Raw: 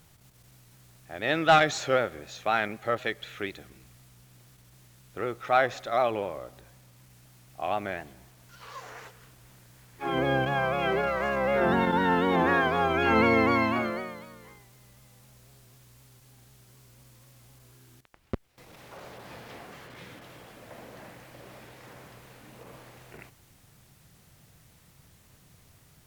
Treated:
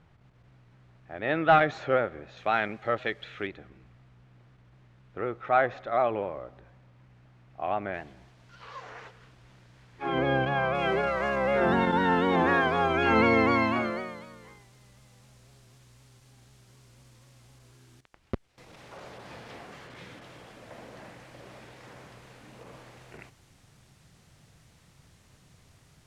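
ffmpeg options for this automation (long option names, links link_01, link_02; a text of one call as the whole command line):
ffmpeg -i in.wav -af "asetnsamples=nb_out_samples=441:pad=0,asendcmd='2.37 lowpass f 3700;3.47 lowpass f 2100;7.94 lowpass f 4100;10.75 lowpass f 8200',lowpass=2100" out.wav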